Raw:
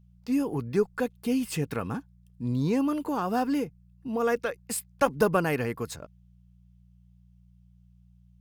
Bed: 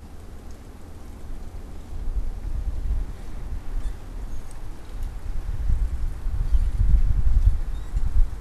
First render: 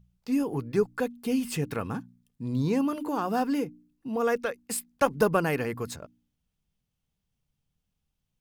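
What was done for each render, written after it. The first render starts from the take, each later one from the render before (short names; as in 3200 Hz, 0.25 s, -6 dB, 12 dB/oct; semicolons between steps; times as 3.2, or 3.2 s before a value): de-hum 60 Hz, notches 5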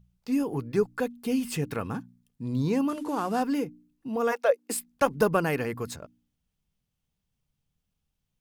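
2.89–3.43 CVSD 64 kbps; 4.31–4.73 resonant high-pass 940 Hz -> 300 Hz, resonance Q 5.8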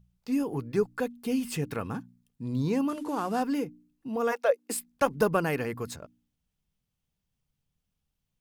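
gain -1.5 dB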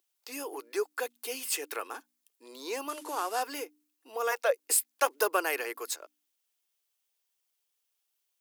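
elliptic high-pass 340 Hz, stop band 60 dB; tilt +3 dB/oct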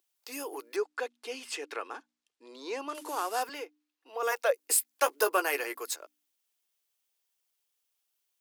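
0.76–2.95 air absorption 95 m; 3.49–4.23 three-band isolator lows -12 dB, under 320 Hz, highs -15 dB, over 5100 Hz; 4.92–5.75 doubler 14 ms -8 dB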